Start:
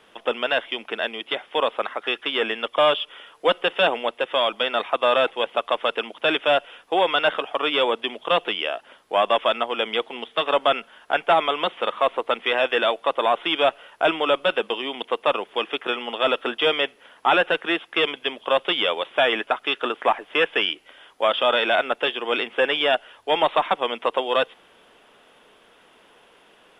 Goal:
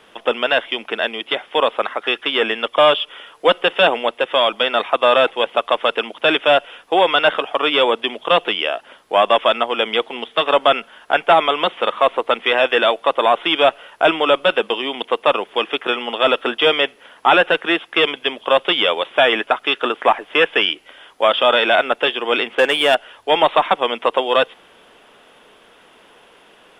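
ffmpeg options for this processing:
-filter_complex "[0:a]asettb=1/sr,asplit=3[a][b][c];[a]atrim=end=22.554[d];[b]atrim=start=22.55:end=22.95,asetpts=PTS-STARTPTS,afade=t=in:d=0.004:c=qsin,afade=t=out:st=0.396:d=0.004:c=qsin,adynamicsmooth=sensitivity=3.5:basefreq=4.3k[e];[c]atrim=start=22.946[f];[d][e]acrossfade=d=0.004:c1=hsin:c2=qsin[g];[g][f]acrossfade=d=0.004:c1=qsin:c2=hsin,volume=5.5dB"

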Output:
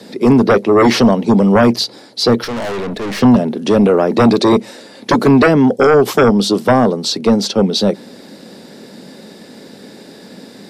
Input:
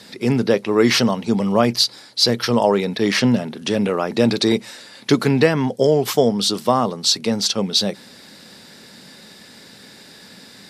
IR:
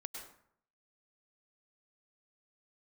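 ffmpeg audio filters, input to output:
-filter_complex "[0:a]acrossover=split=190|680|4700[a][b][c][d];[b]aeval=exprs='0.501*sin(PI/2*3.16*val(0)/0.501)':c=same[e];[d]alimiter=limit=-15dB:level=0:latency=1:release=366[f];[a][e][c][f]amix=inputs=4:normalize=0,asettb=1/sr,asplit=3[g][h][i];[g]atrim=end=2.444[j];[h]atrim=start=2.44:end=3.22,asetpts=PTS-STARTPTS,afade=t=in:d=0.004:c=qsin,afade=t=out:st=0.776:d=0.004:c=qsin,aeval=exprs='(tanh(10*val(0)+0.35)-tanh(0.35))/10':c=same[k];[i]atrim=start=3.216[l];[j][k]acrossfade=d=0.004:c1=hsin:c2=qsin[m];[m][l]acrossfade=d=0.004:c1=qsin:c2=hsin"

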